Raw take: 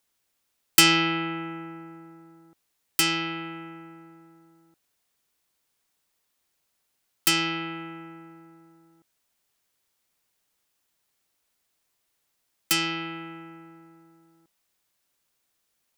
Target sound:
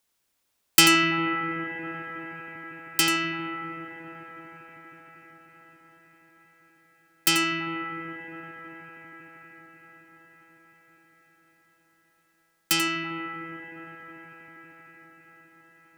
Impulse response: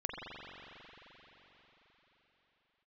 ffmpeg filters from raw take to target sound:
-filter_complex "[0:a]asplit=2[link_01][link_02];[1:a]atrim=start_sample=2205,asetrate=24255,aresample=44100,adelay=88[link_03];[link_02][link_03]afir=irnorm=-1:irlink=0,volume=-8.5dB[link_04];[link_01][link_04]amix=inputs=2:normalize=0"

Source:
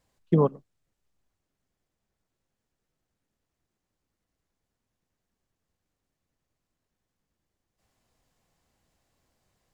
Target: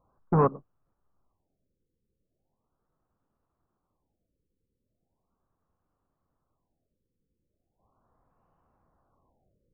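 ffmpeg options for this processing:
ffmpeg -i in.wav -af "volume=22.5dB,asoftclip=hard,volume=-22.5dB,highshelf=frequency=1600:width_type=q:width=3:gain=-10,afftfilt=real='re*lt(b*sr/1024,520*pow(3100/520,0.5+0.5*sin(2*PI*0.38*pts/sr)))':imag='im*lt(b*sr/1024,520*pow(3100/520,0.5+0.5*sin(2*PI*0.38*pts/sr)))':win_size=1024:overlap=0.75,volume=3dB" out.wav

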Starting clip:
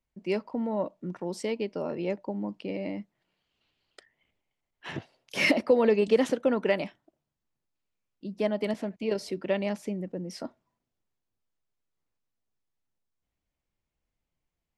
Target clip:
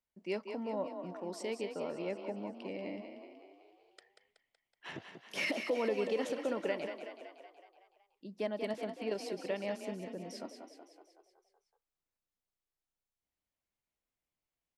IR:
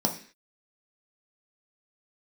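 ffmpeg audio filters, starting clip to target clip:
-filter_complex "[0:a]lowshelf=frequency=180:gain=-11,alimiter=limit=-18dB:level=0:latency=1:release=252,asplit=2[link_01][link_02];[link_02]asplit=7[link_03][link_04][link_05][link_06][link_07][link_08][link_09];[link_03]adelay=187,afreqshift=30,volume=-7.5dB[link_10];[link_04]adelay=374,afreqshift=60,volume=-12.2dB[link_11];[link_05]adelay=561,afreqshift=90,volume=-17dB[link_12];[link_06]adelay=748,afreqshift=120,volume=-21.7dB[link_13];[link_07]adelay=935,afreqshift=150,volume=-26.4dB[link_14];[link_08]adelay=1122,afreqshift=180,volume=-31.2dB[link_15];[link_09]adelay=1309,afreqshift=210,volume=-35.9dB[link_16];[link_10][link_11][link_12][link_13][link_14][link_15][link_16]amix=inputs=7:normalize=0[link_17];[link_01][link_17]amix=inputs=2:normalize=0,volume=-6dB"

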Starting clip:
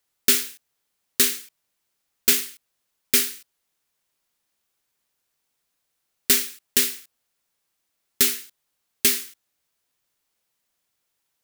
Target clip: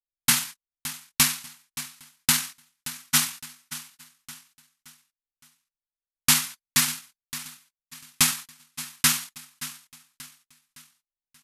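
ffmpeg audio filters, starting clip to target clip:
ffmpeg -i in.wav -af "anlmdn=0.158,aecho=1:1:574|1148|1722|2296:0.188|0.0753|0.0301|0.0121,asetrate=26990,aresample=44100,atempo=1.63392,volume=-2dB" out.wav

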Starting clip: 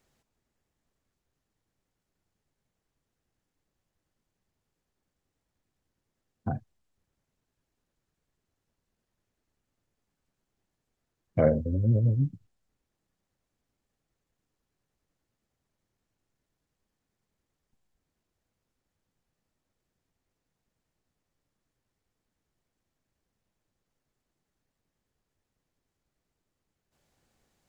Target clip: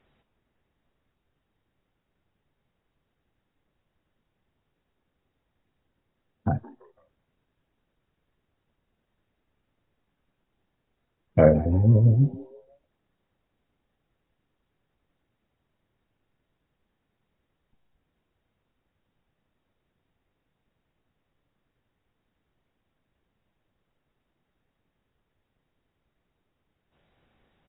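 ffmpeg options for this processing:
ffmpeg -i in.wav -filter_complex "[0:a]asplit=4[link_01][link_02][link_03][link_04];[link_02]adelay=167,afreqshift=140,volume=-22dB[link_05];[link_03]adelay=334,afreqshift=280,volume=-30.9dB[link_06];[link_04]adelay=501,afreqshift=420,volume=-39.7dB[link_07];[link_01][link_05][link_06][link_07]amix=inputs=4:normalize=0,volume=6dB" -ar 16000 -c:a aac -b:a 16k out.aac

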